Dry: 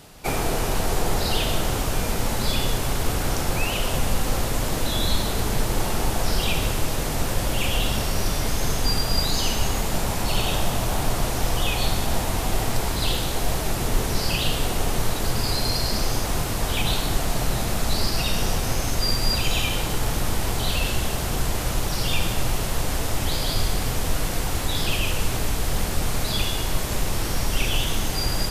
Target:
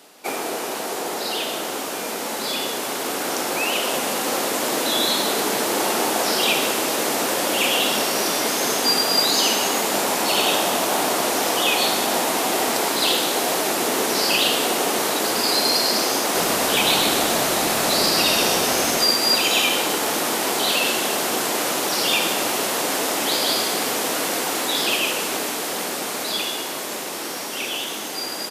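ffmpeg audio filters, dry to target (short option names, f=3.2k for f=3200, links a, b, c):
-filter_complex "[0:a]highpass=f=260:w=0.5412,highpass=f=260:w=1.3066,dynaudnorm=f=540:g=13:m=7.5dB,asplit=3[a][b][c];[a]afade=t=out:st=16.34:d=0.02[d];[b]asplit=8[e][f][g][h][i][j][k][l];[f]adelay=127,afreqshift=-49,volume=-5dB[m];[g]adelay=254,afreqshift=-98,volume=-10.5dB[n];[h]adelay=381,afreqshift=-147,volume=-16dB[o];[i]adelay=508,afreqshift=-196,volume=-21.5dB[p];[j]adelay=635,afreqshift=-245,volume=-27.1dB[q];[k]adelay=762,afreqshift=-294,volume=-32.6dB[r];[l]adelay=889,afreqshift=-343,volume=-38.1dB[s];[e][m][n][o][p][q][r][s]amix=inputs=8:normalize=0,afade=t=in:st=16.34:d=0.02,afade=t=out:st=19.04:d=0.02[t];[c]afade=t=in:st=19.04:d=0.02[u];[d][t][u]amix=inputs=3:normalize=0"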